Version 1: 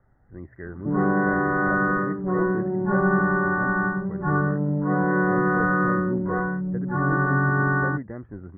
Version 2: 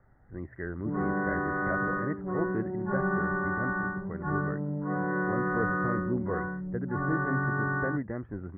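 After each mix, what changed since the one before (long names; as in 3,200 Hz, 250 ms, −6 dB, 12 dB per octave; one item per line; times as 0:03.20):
background −9.0 dB
master: remove high-frequency loss of the air 280 metres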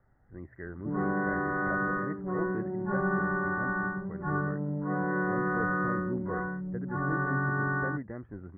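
speech −5.0 dB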